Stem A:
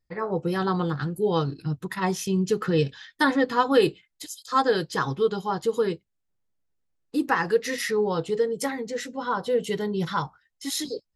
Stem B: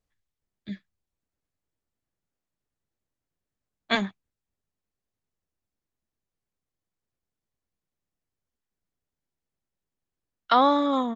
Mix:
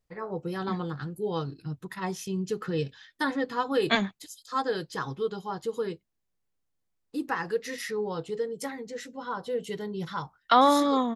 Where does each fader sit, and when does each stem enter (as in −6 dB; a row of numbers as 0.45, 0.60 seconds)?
−7.0, 0.0 decibels; 0.00, 0.00 seconds